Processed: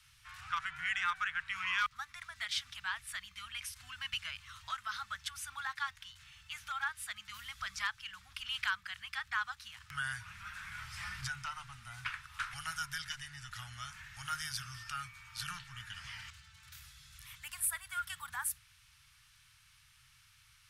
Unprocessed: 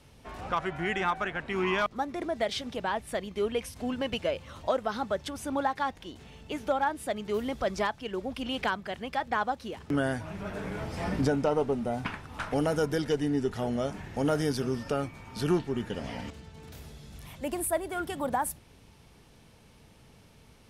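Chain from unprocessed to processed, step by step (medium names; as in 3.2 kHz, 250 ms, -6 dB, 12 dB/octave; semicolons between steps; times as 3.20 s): elliptic band-stop 120–1300 Hz, stop band 80 dB; bass shelf 390 Hz -11 dB; hum notches 50/100/150 Hz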